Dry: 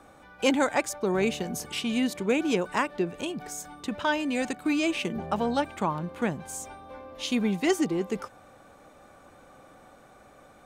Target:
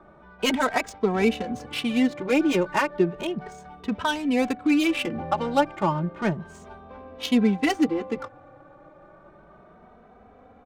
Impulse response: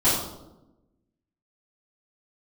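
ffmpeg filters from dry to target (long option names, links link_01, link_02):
-filter_complex "[0:a]adynamicsmooth=sensitivity=5:basefreq=1500,asplit=2[link_01][link_02];[link_02]adelay=2.8,afreqshift=0.32[link_03];[link_01][link_03]amix=inputs=2:normalize=1,volume=7dB"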